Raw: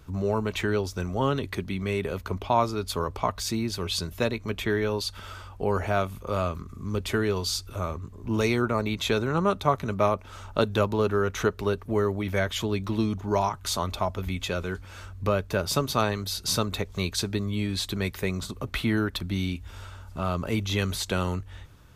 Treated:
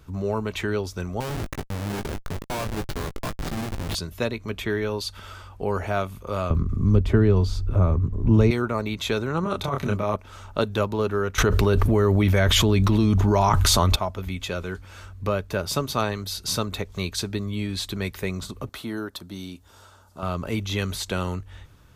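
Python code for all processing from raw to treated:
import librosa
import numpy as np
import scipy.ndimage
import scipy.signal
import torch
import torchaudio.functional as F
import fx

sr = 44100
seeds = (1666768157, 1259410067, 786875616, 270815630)

y = fx.chain(x, sr, fx.high_shelf(hz=3500.0, db=-6.0),
    fx.schmitt(flips_db=-28.5),
    fx.doubler(ms=19.0, db=-8.5), at=(1.2, 3.95))
y = fx.chain(y, sr, fx.tilt_eq(slope=-4.0),
    fx.band_squash(depth_pct=40), at=(6.5, 8.51))
y = fx.chain(y, sr, fx.over_compress(threshold_db=-26.0, ratio=-1.0),
    fx.doubler(ms=29.0, db=-2.5), at=(9.43, 10.16))
y = fx.chain(y, sr, fx.low_shelf(hz=100.0, db=10.5),
    fx.env_flatten(amount_pct=100), at=(11.38, 13.96))
y = fx.chain(y, sr, fx.highpass(hz=420.0, slope=6),
    fx.peak_eq(hz=2300.0, db=-11.5, octaves=1.1), at=(18.69, 20.23))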